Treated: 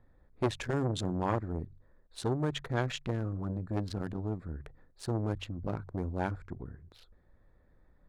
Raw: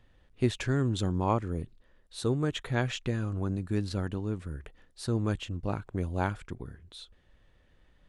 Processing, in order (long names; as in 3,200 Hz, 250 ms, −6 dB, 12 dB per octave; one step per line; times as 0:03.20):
adaptive Wiener filter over 15 samples
hum removal 46.71 Hz, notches 3
saturating transformer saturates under 720 Hz